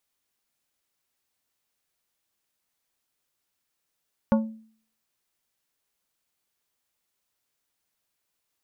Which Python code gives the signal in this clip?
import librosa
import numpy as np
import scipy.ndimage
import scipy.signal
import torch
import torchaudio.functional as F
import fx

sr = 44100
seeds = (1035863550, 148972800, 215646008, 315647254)

y = fx.strike_glass(sr, length_s=0.89, level_db=-15, body='plate', hz=221.0, decay_s=0.51, tilt_db=5, modes=5)